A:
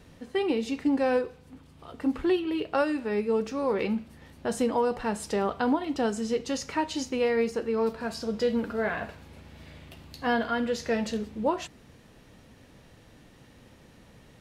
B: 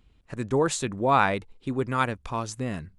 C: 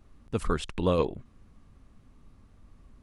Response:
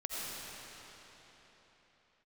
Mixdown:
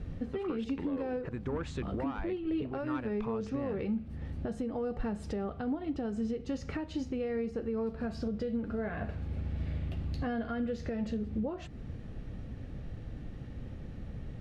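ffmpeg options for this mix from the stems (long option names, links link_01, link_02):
-filter_complex "[0:a]bandreject=frequency=970:width=6.6,acompressor=threshold=-35dB:ratio=3,aemphasis=mode=reproduction:type=riaa,volume=1dB[link_01];[1:a]asoftclip=type=tanh:threshold=-19dB,adelay=950,volume=1.5dB[link_02];[2:a]highpass=180,asoftclip=type=tanh:threshold=-20dB,volume=-2.5dB[link_03];[link_02][link_03]amix=inputs=2:normalize=0,lowpass=2500,acompressor=threshold=-33dB:ratio=6,volume=0dB[link_04];[link_01][link_04]amix=inputs=2:normalize=0,alimiter=level_in=1.5dB:limit=-24dB:level=0:latency=1:release=433,volume=-1.5dB"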